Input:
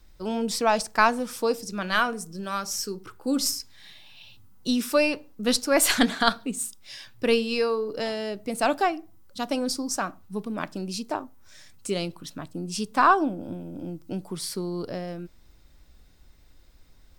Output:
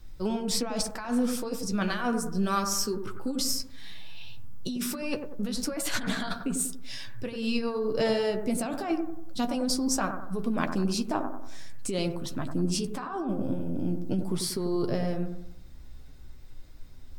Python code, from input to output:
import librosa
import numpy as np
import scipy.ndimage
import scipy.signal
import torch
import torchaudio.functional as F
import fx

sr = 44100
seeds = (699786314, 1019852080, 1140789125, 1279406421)

p1 = fx.low_shelf(x, sr, hz=220.0, db=8.0)
p2 = fx.over_compress(p1, sr, threshold_db=-27.0, ratio=-1.0)
p3 = fx.chorus_voices(p2, sr, voices=6, hz=0.26, base_ms=12, depth_ms=4.6, mix_pct=30)
y = p3 + fx.echo_bbd(p3, sr, ms=94, stages=1024, feedback_pct=44, wet_db=-7, dry=0)